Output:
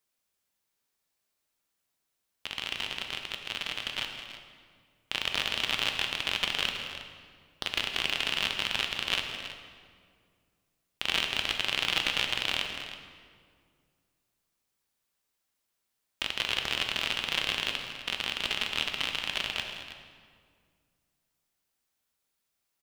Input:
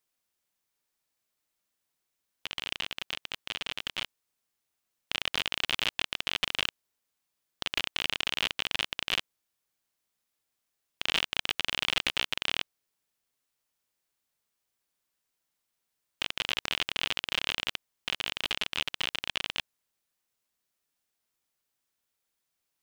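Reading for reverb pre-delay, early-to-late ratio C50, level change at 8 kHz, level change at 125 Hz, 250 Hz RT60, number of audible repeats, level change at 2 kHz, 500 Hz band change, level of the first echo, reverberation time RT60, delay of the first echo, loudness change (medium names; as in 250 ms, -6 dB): 5 ms, 4.5 dB, +1.5 dB, +2.5 dB, 2.5 s, 3, +1.5 dB, +2.0 dB, -16.5 dB, 2.0 s, 163 ms, +1.5 dB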